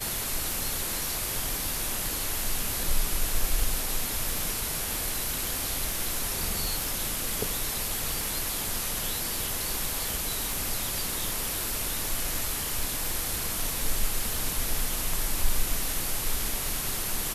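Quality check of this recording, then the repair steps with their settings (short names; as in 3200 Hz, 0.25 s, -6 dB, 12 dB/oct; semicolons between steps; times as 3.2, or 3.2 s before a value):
tick 78 rpm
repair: de-click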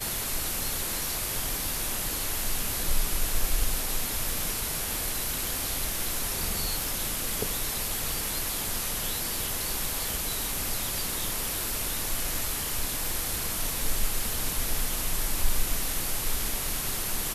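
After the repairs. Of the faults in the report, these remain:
none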